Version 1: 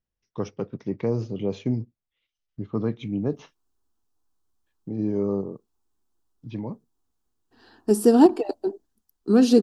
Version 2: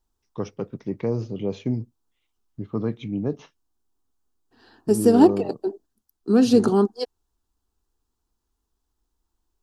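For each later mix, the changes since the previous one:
second voice: entry -3.00 s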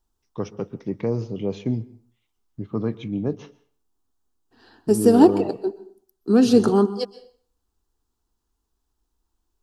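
reverb: on, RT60 0.50 s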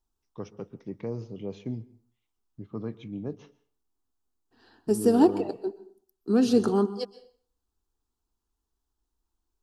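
first voice -9.5 dB; second voice -6.0 dB

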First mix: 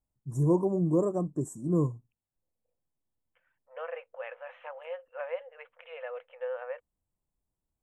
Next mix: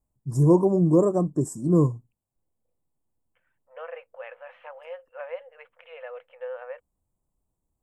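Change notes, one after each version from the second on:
first voice +7.0 dB; master: remove Butterworth band-stop 4800 Hz, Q 3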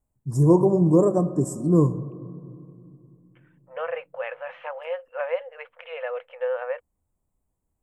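second voice +8.5 dB; reverb: on, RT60 2.6 s

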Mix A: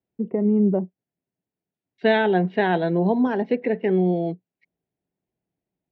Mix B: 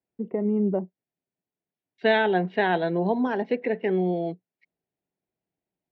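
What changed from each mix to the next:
master: add low shelf 350 Hz -7.5 dB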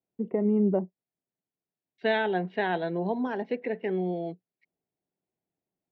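second voice -5.0 dB

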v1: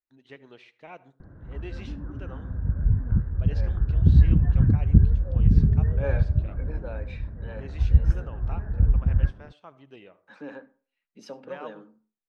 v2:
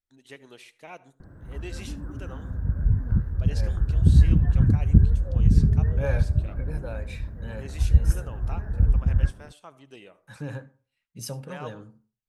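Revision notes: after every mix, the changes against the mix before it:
second voice: remove steep high-pass 220 Hz 36 dB/oct; master: remove air absorption 230 m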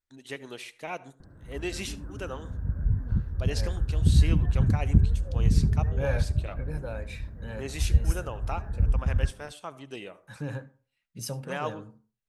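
first voice +7.0 dB; background -4.0 dB

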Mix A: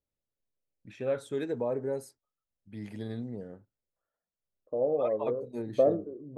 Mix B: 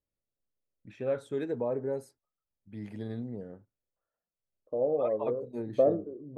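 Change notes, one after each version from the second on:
master: add high shelf 2800 Hz -7.5 dB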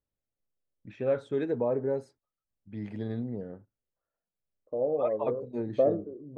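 first voice +3.5 dB; master: add air absorption 100 m

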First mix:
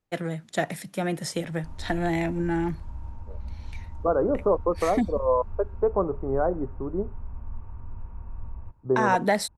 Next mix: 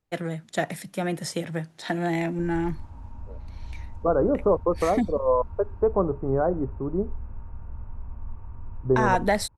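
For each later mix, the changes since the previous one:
second voice: remove HPF 260 Hz 6 dB/oct; background: entry +0.75 s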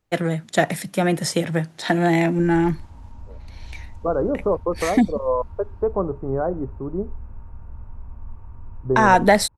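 first voice +8.0 dB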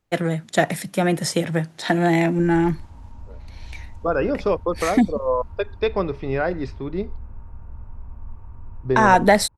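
second voice: remove steep low-pass 1200 Hz 36 dB/oct

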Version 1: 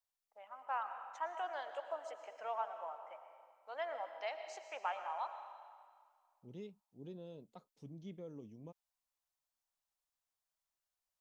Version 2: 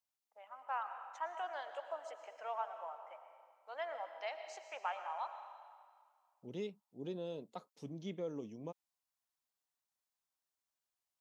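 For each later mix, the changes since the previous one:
second voice +10.5 dB; master: add HPF 350 Hz 6 dB/oct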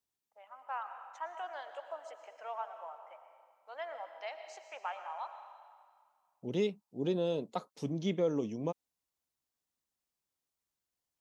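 second voice +10.5 dB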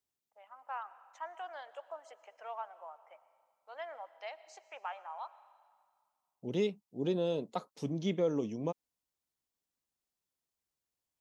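first voice: send -10.0 dB

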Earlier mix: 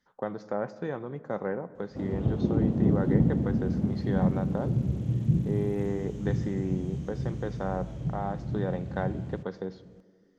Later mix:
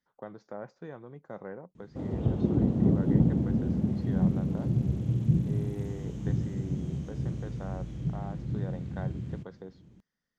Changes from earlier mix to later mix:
speech -8.0 dB; reverb: off

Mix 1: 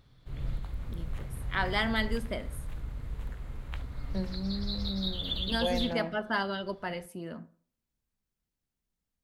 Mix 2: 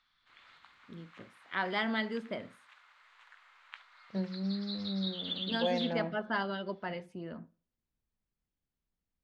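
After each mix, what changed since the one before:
first voice: send -10.0 dB; background: add HPF 1100 Hz 24 dB/oct; master: add air absorption 130 m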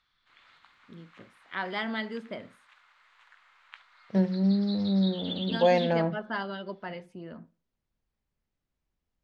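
second voice +10.5 dB

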